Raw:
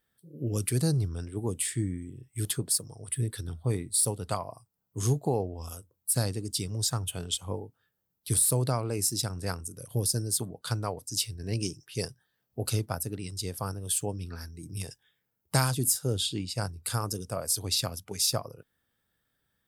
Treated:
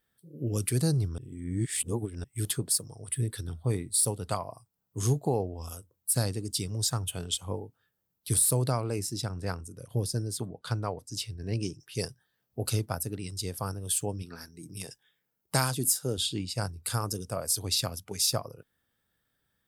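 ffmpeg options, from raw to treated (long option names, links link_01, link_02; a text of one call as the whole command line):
ffmpeg -i in.wav -filter_complex "[0:a]asettb=1/sr,asplit=3[link_01][link_02][link_03];[link_01]atrim=end=8.994[link_04];[link_02]atrim=start=8.99:end=11.8,asetpts=PTS-STARTPTS,afade=type=in:duration=0.004:curve=qsin,afade=type=out:start_time=2.806:duration=0.004:curve=qsin,lowpass=frequency=3200:poles=1[link_05];[link_03]atrim=start=11.796[link_06];[link_04][link_05]acrossfade=duration=0.004:curve1=hsin:curve2=qsin[link_07];[link_07][link_06]acrossfade=duration=0.004:curve1=qsin:curve2=hsin,asettb=1/sr,asplit=3[link_08][link_09][link_10];[link_08]atrim=end=14.224[link_11];[link_09]atrim=start=14.22:end=16.18,asetpts=PTS-STARTPTS,afade=type=in:duration=0.004:curve=qsin,afade=type=out:start_time=1.956:duration=0.004:curve=qsin,equalizer=frequency=79:width_type=o:width=0.77:gain=-14.5[link_12];[link_10]atrim=start=16.176[link_13];[link_11][link_12]acrossfade=duration=0.004:curve1=hsin:curve2=qsin[link_14];[link_14][link_13]acrossfade=duration=0.004:curve1=qsin:curve2=hsin,asplit=3[link_15][link_16][link_17];[link_15]atrim=end=1.182[link_18];[link_16]atrim=start=1.178:end=2.242,asetpts=PTS-STARTPTS,areverse[link_19];[link_17]atrim=start=2.238[link_20];[link_18][link_19]acrossfade=duration=0.004:curve1=hsin:curve2=hsin[link_21];[link_21][link_20]acrossfade=duration=0.004:curve1=hsin:curve2=hsin" out.wav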